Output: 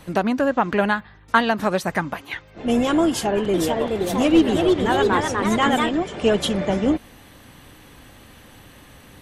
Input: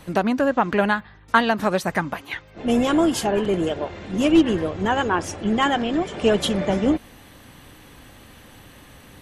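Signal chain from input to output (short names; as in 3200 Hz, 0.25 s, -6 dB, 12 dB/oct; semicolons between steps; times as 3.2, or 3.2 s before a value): 3.07–5.89 echoes that change speed 0.469 s, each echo +2 st, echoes 2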